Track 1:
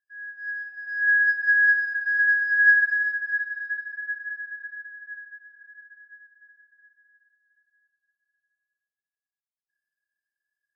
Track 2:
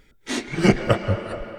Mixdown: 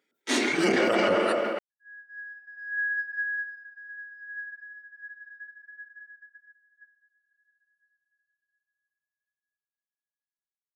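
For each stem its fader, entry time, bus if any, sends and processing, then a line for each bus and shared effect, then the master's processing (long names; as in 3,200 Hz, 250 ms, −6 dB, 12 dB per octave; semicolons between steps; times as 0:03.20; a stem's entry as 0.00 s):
0:03.13 −6.5 dB → 0:03.83 −19 dB → 0:04.82 −19 dB → 0:05.22 −12 dB, 1.70 s, no send, resonant band-pass 1,400 Hz, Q 0.76; notch filter 1,600 Hz, Q 16
+2.0 dB, 0.00 s, no send, noise gate −49 dBFS, range −9 dB; high-pass filter 250 Hz 24 dB per octave; level that may fall only so fast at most 26 dB per second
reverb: not used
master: noise gate −51 dBFS, range −10 dB; brickwall limiter −14.5 dBFS, peak gain reduction 11 dB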